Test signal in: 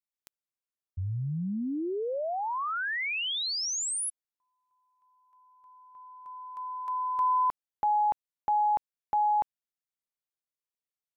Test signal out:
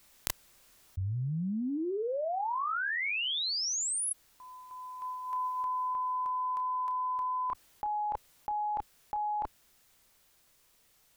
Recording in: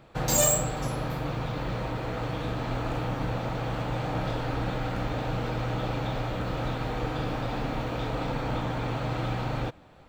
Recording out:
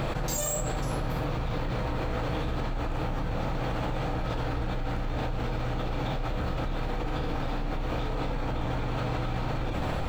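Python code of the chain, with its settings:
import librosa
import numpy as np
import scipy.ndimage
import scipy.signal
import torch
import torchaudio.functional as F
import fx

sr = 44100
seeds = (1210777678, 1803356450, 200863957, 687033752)

y = fx.low_shelf(x, sr, hz=66.0, db=9.5)
y = fx.rider(y, sr, range_db=10, speed_s=2.0)
y = fx.chorus_voices(y, sr, voices=6, hz=0.27, base_ms=30, depth_ms=2.0, mix_pct=25)
y = fx.env_flatten(y, sr, amount_pct=100)
y = F.gain(torch.from_numpy(y), -7.0).numpy()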